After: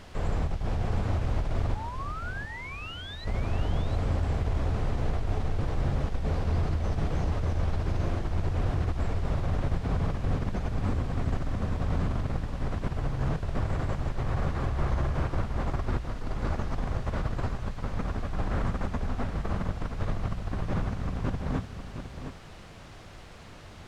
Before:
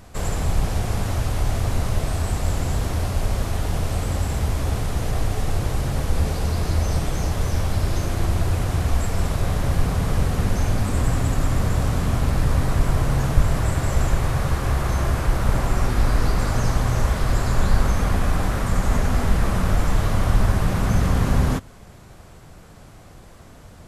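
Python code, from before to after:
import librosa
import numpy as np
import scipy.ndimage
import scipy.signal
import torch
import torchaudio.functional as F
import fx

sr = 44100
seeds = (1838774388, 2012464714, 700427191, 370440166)

y = fx.spec_paint(x, sr, seeds[0], shape='rise', start_s=1.75, length_s=1.5, low_hz=830.0, high_hz=4100.0, level_db=-17.0)
y = fx.over_compress(y, sr, threshold_db=-21.0, ratio=-0.5)
y = fx.hum_notches(y, sr, base_hz=60, count=3)
y = fx.quant_dither(y, sr, seeds[1], bits=6, dither='triangular')
y = fx.spacing_loss(y, sr, db_at_10k=25)
y = y + 10.0 ** (-9.0 / 20.0) * np.pad(y, (int(713 * sr / 1000.0), 0))[:len(y)]
y = F.gain(torch.from_numpy(y), -6.0).numpy()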